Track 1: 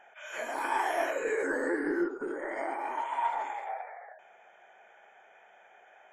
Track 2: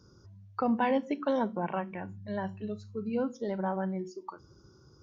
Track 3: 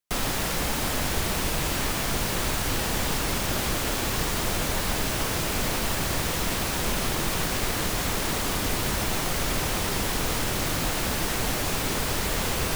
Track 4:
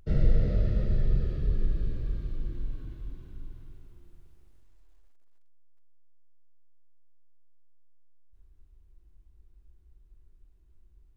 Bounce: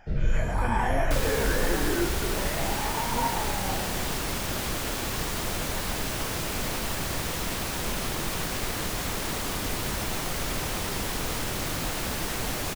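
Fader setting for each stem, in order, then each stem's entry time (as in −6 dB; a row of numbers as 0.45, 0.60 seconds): +1.0, −6.5, −3.5, −2.5 decibels; 0.00, 0.00, 1.00, 0.00 seconds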